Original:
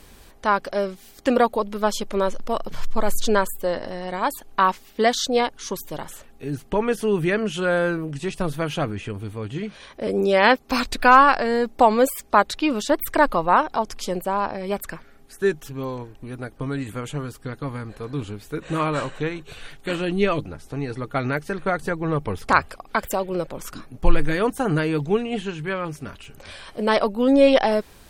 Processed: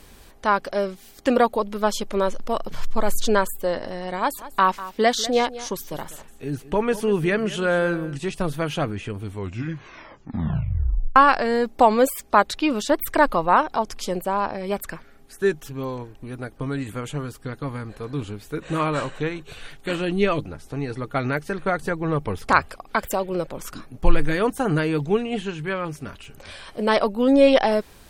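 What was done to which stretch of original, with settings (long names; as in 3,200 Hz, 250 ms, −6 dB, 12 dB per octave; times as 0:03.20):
0:04.19–0:08.17: single-tap delay 196 ms −16 dB
0:09.22: tape stop 1.94 s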